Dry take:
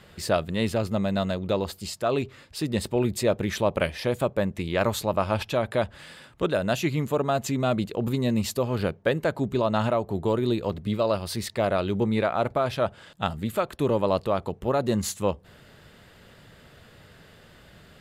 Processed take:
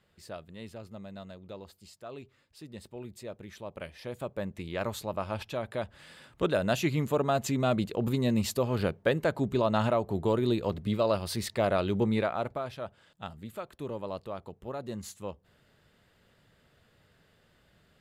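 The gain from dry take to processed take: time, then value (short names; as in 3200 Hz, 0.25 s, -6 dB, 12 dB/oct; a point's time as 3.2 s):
3.6 s -18.5 dB
4.48 s -9 dB
5.91 s -9 dB
6.44 s -2.5 dB
12.11 s -2.5 dB
12.81 s -13.5 dB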